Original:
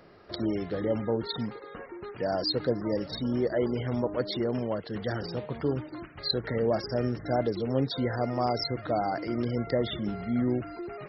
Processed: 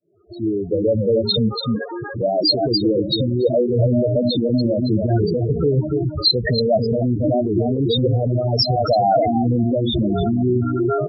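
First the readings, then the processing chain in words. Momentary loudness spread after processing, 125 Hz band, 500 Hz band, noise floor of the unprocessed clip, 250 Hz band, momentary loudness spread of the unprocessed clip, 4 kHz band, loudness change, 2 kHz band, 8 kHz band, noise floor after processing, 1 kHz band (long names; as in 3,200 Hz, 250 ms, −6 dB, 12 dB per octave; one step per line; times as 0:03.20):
4 LU, +14.0 dB, +11.0 dB, −46 dBFS, +11.0 dB, 7 LU, +14.0 dB, +11.5 dB, +4.5 dB, can't be measured, −31 dBFS, +10.5 dB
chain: fade in at the beginning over 2.29 s
dynamic equaliser 4,000 Hz, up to +4 dB, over −50 dBFS, Q 7.2
downward compressor 8 to 1, threshold −30 dBFS, peak gain reduction 11 dB
single-tap delay 285 ms −5.5 dB
spectral peaks only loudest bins 8
boost into a limiter +31 dB
flanger whose copies keep moving one way rising 0.4 Hz
level −4.5 dB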